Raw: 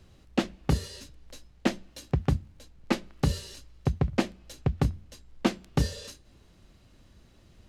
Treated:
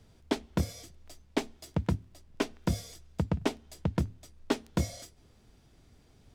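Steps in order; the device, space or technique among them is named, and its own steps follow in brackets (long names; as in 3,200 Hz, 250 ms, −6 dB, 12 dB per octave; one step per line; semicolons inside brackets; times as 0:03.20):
nightcore (speed change +21%)
level −3.5 dB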